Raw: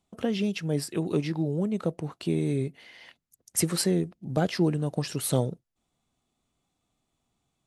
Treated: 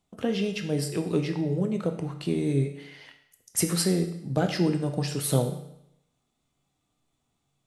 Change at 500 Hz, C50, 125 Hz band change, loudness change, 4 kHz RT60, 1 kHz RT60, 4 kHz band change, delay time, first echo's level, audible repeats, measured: +1.0 dB, 9.0 dB, +1.5 dB, +1.0 dB, 0.75 s, 0.80 s, +1.5 dB, none, none, none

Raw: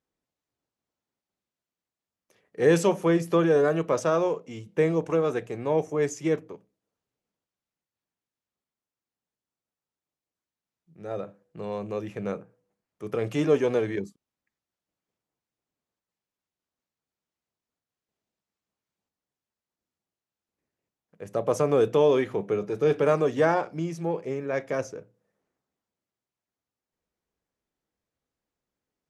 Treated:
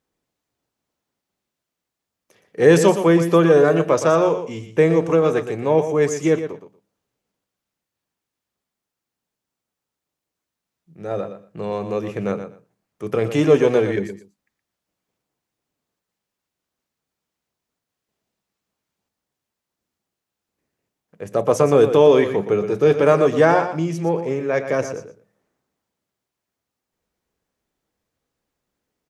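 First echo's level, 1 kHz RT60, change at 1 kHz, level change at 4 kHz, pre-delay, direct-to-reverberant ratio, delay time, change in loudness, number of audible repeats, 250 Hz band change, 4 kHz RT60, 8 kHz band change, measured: -10.0 dB, none, +8.0 dB, +8.0 dB, none, none, 0.119 s, +8.0 dB, 2, +8.0 dB, none, +8.0 dB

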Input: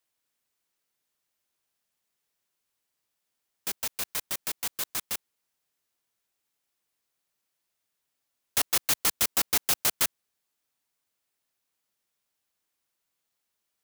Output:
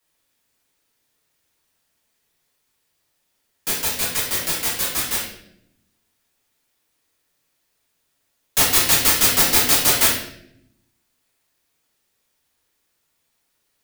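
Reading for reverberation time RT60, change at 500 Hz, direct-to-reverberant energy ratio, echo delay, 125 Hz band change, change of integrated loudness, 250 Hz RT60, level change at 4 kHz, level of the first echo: 0.70 s, +12.5 dB, -7.0 dB, none, +15.0 dB, +10.5 dB, 1.2 s, +11.0 dB, none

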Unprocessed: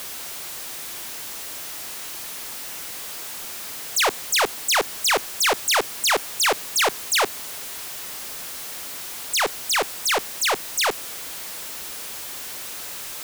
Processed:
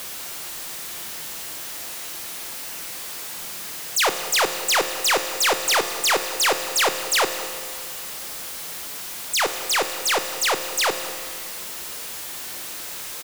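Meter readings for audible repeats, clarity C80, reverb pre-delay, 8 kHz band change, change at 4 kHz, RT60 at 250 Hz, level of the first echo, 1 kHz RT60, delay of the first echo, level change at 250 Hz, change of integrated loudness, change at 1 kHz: 1, 9.0 dB, 6 ms, +0.5 dB, +0.5 dB, 2.3 s, -17.5 dB, 2.3 s, 0.197 s, +2.0 dB, +0.5 dB, +0.5 dB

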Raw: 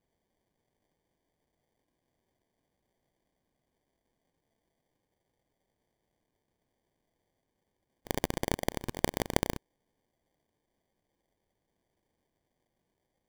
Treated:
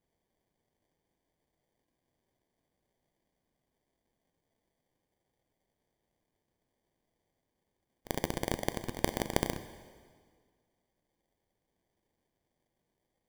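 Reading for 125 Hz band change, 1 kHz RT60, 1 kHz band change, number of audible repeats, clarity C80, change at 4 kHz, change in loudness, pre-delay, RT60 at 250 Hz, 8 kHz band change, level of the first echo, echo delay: -1.5 dB, 1.8 s, -2.0 dB, none, 13.5 dB, -1.5 dB, -2.0 dB, 5 ms, 1.9 s, -1.5 dB, none, none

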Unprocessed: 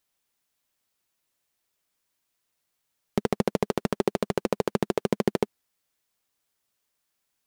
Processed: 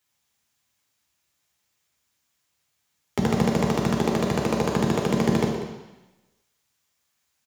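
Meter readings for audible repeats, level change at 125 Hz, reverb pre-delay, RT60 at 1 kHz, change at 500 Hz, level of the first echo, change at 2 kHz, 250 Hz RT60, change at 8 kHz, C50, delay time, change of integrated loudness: 1, +9.0 dB, 3 ms, 1.1 s, +1.5 dB, -14.0 dB, +5.5 dB, 1.0 s, +6.5 dB, 3.5 dB, 0.193 s, +4.5 dB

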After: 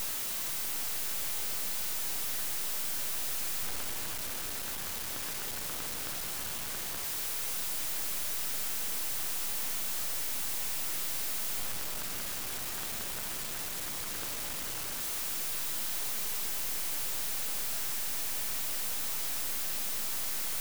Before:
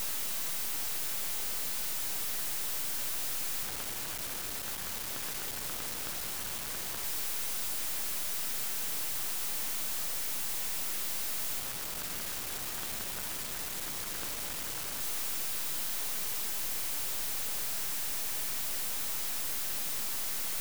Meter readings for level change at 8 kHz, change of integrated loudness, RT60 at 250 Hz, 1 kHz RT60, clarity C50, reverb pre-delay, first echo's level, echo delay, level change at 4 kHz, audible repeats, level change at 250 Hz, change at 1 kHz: +0.5 dB, +0.5 dB, 2.5 s, 2.5 s, 11.0 dB, 21 ms, none, none, +0.5 dB, none, +0.5 dB, +0.5 dB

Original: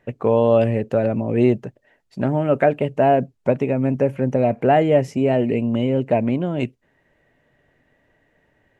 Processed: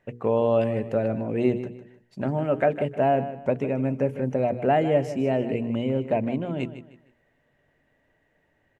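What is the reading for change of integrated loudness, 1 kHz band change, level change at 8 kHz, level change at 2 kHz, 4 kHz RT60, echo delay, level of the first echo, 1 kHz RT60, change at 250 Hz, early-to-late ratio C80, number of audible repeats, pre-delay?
-5.5 dB, -5.0 dB, n/a, -5.0 dB, none, 0.154 s, -12.5 dB, none, -6.0 dB, none, 3, none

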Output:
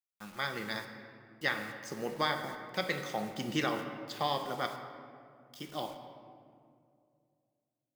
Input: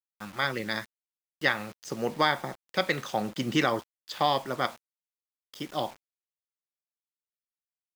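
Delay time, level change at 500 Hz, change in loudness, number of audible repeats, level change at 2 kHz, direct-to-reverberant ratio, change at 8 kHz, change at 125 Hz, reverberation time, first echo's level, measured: none, -6.0 dB, -6.0 dB, none, -6.0 dB, 5.5 dB, -4.5 dB, -6.0 dB, 2.3 s, none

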